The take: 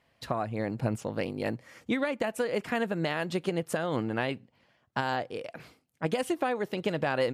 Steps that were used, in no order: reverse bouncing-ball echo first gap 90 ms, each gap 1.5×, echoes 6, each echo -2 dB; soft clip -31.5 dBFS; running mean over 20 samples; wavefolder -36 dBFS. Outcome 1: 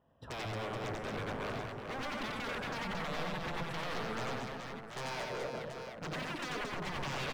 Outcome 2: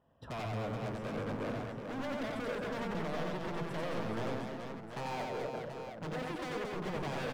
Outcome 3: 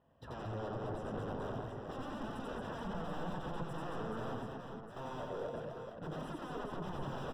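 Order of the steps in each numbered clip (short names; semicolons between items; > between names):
running mean > wavefolder > soft clip > reverse bouncing-ball echo; running mean > soft clip > wavefolder > reverse bouncing-ball echo; wavefolder > running mean > soft clip > reverse bouncing-ball echo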